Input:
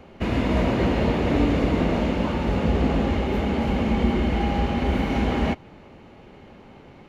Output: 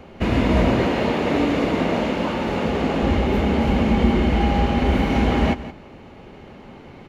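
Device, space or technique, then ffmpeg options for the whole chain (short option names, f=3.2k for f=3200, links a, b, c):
ducked delay: -filter_complex "[0:a]asettb=1/sr,asplit=3[a][b][c];[a]atrim=end=0.814[d];[b]atrim=start=0.81:end=3.03,asetpts=PTS-STARTPTS,afade=t=in:d=0.004:c=qsin,afade=t=out:st=2.216:d=0.004:c=qsin,highpass=f=280:p=1[e];[c]atrim=start=3.026[f];[d][e]acrossfade=d=0.004:c1=hsin:c2=qsin[g];[g][f]acrossfade=d=0.004:c1=qsin:c2=hsin,asplit=3[h][i][j];[i]adelay=171,volume=-6dB[k];[j]apad=whole_len=320200[l];[k][l]sidechaincompress=threshold=-27dB:ratio=8:attack=29:release=1500[m];[h][m]amix=inputs=2:normalize=0,volume=4dB"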